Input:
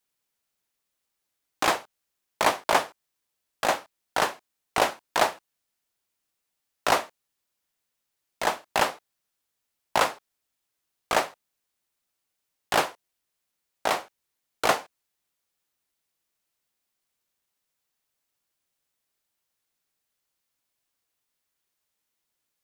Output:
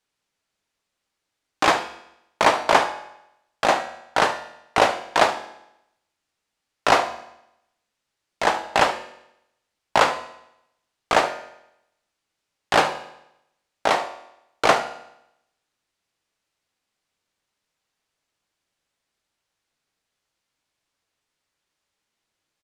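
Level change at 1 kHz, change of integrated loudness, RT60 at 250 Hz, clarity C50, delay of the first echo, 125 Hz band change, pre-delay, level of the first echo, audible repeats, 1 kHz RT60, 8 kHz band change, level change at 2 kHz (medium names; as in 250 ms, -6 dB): +6.0 dB, +5.5 dB, 0.80 s, 10.5 dB, 73 ms, +6.0 dB, 6 ms, -15.0 dB, 1, 0.80 s, +0.5 dB, +5.5 dB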